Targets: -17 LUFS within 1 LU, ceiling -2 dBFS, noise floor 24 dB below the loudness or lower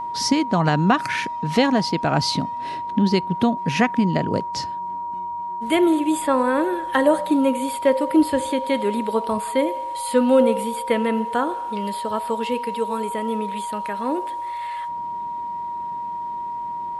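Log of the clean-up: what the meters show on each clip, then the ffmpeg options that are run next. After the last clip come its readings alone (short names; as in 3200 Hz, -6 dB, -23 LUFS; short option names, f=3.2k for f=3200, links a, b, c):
steady tone 950 Hz; tone level -26 dBFS; loudness -22.0 LUFS; peak -4.5 dBFS; loudness target -17.0 LUFS
-> -af "bandreject=f=950:w=30"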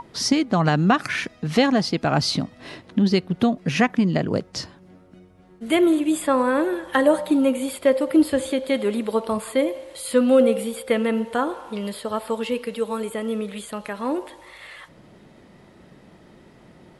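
steady tone none; loudness -22.0 LUFS; peak -5.0 dBFS; loudness target -17.0 LUFS
-> -af "volume=5dB,alimiter=limit=-2dB:level=0:latency=1"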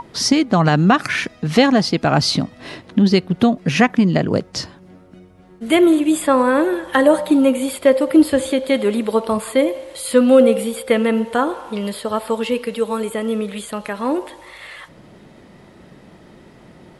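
loudness -17.0 LUFS; peak -2.0 dBFS; noise floor -46 dBFS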